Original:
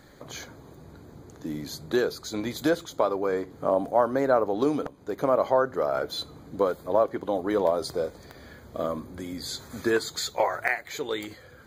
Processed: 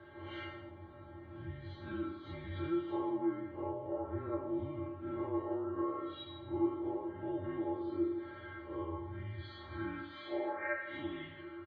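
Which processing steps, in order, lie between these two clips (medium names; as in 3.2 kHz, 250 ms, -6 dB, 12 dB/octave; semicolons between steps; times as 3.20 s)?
spectral blur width 136 ms; compression 6:1, threshold -38 dBFS, peak gain reduction 16 dB; feedback comb 250 Hz, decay 0.25 s, harmonics all, mix 100%; mistuned SSB -160 Hz 300–3000 Hz; delay 160 ms -12 dB; trim +16 dB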